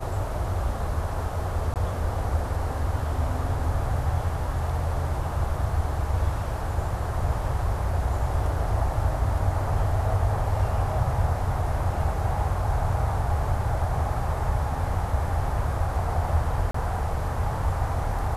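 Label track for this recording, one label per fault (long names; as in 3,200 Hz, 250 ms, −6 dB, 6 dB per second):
1.740000	1.760000	drop-out 18 ms
16.710000	16.740000	drop-out 34 ms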